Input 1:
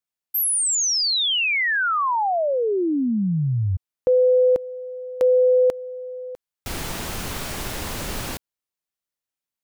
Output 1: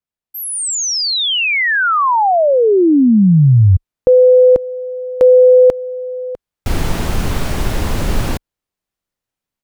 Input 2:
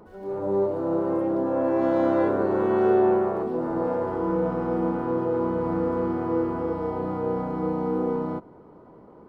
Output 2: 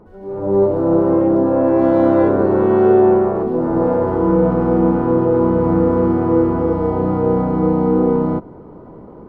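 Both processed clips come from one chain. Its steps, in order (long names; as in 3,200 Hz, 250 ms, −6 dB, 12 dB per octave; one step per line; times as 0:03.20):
spectral tilt −2 dB per octave
automatic gain control gain up to 8.5 dB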